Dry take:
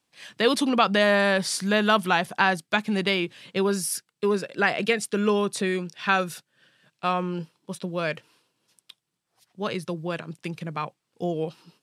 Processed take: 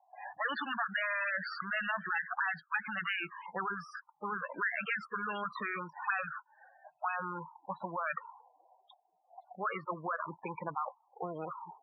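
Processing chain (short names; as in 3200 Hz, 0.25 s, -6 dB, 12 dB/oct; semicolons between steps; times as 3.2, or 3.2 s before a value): bell 430 Hz -11.5 dB 0.55 oct, from 8.06 s 62 Hz; auto-wah 730–1700 Hz, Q 8.9, up, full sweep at -20.5 dBFS; loudest bins only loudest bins 16; air absorption 180 m; spectral compressor 4:1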